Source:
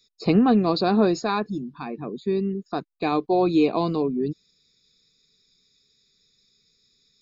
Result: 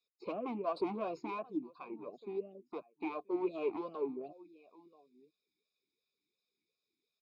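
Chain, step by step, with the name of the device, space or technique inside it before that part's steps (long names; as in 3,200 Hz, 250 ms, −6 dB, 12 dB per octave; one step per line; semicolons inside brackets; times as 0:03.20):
high-shelf EQ 6,200 Hz +3 dB
harmonic and percussive parts rebalanced harmonic −5 dB
0:00.81–0:01.50: parametric band 140 Hz +11 dB 1.2 octaves
single-tap delay 980 ms −23 dB
talk box (tube saturation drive 22 dB, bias 0.65; formant filter swept between two vowels a-u 2.8 Hz)
level +2.5 dB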